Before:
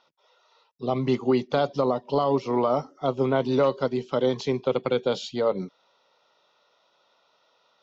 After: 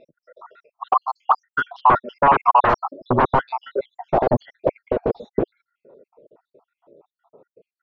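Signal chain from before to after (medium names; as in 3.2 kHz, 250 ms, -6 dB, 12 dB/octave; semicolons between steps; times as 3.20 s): random holes in the spectrogram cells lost 77%; sine folder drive 19 dB, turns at -12 dBFS; low-pass sweep 1.1 kHz -> 400 Hz, 3.08–5.56 s; trim -1.5 dB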